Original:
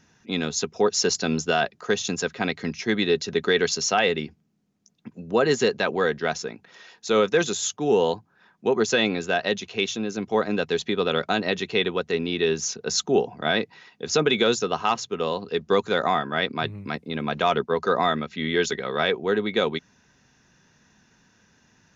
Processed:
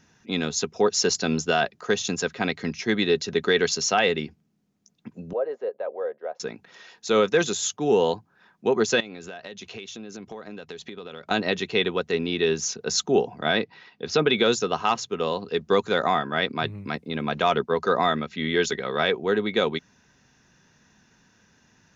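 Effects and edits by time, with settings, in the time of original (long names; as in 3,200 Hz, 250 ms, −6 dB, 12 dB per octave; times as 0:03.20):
0:05.33–0:06.40: four-pole ladder band-pass 600 Hz, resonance 70%
0:09.00–0:11.31: downward compressor 12 to 1, threshold −34 dBFS
0:13.57–0:14.44: low-pass filter 5,200 Hz 24 dB per octave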